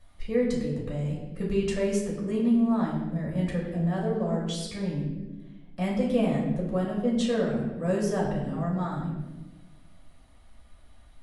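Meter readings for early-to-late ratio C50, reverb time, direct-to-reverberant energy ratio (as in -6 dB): 3.5 dB, 1.2 s, -4.5 dB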